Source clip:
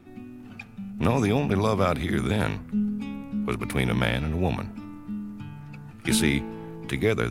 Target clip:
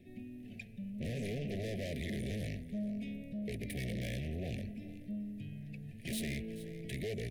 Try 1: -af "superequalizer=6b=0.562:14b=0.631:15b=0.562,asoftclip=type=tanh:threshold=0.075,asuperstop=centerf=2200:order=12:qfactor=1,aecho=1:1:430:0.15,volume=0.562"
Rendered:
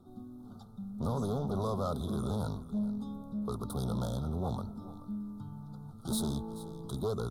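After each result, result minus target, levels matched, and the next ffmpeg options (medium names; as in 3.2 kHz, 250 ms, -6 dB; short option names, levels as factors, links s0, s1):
2 kHz band -18.5 dB; saturation: distortion -5 dB
-af "superequalizer=6b=0.562:14b=0.631:15b=0.562,asoftclip=type=tanh:threshold=0.075,asuperstop=centerf=1100:order=12:qfactor=1,aecho=1:1:430:0.15,volume=0.562"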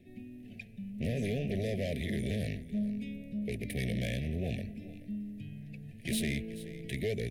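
saturation: distortion -5 dB
-af "superequalizer=6b=0.562:14b=0.631:15b=0.562,asoftclip=type=tanh:threshold=0.0299,asuperstop=centerf=1100:order=12:qfactor=1,aecho=1:1:430:0.15,volume=0.562"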